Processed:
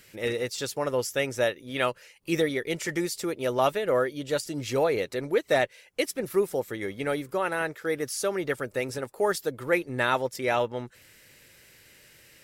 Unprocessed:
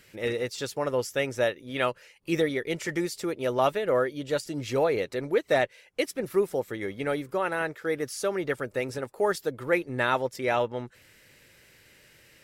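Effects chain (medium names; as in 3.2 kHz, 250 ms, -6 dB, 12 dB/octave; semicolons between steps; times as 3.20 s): treble shelf 5 kHz +6 dB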